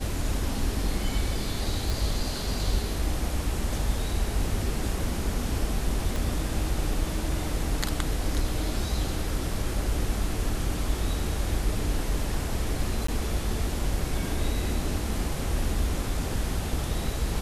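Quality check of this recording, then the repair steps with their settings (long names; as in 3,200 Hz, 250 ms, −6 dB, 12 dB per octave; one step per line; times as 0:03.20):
0:01.90: click
0:06.16: click
0:13.07–0:13.08: drop-out 14 ms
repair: click removal
repair the gap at 0:13.07, 14 ms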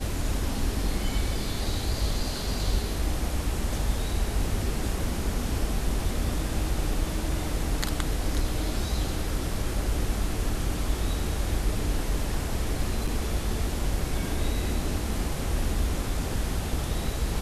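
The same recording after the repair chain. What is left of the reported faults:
0:06.16: click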